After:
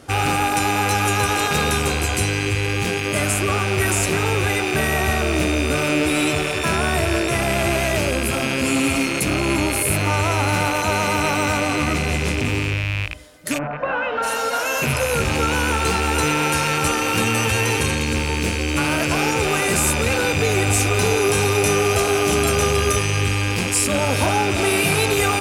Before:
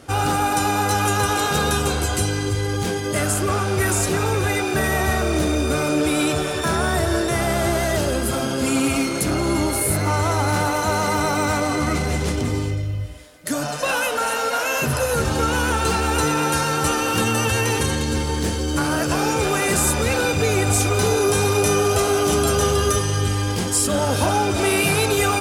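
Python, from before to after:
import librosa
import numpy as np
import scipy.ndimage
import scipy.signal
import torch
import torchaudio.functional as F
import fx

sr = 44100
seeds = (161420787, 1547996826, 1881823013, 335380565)

y = fx.rattle_buzz(x, sr, strikes_db=-32.0, level_db=-13.0)
y = fx.lowpass(y, sr, hz=fx.line((13.57, 1400.0), (14.22, 3200.0)), slope=24, at=(13.57, 14.22), fade=0.02)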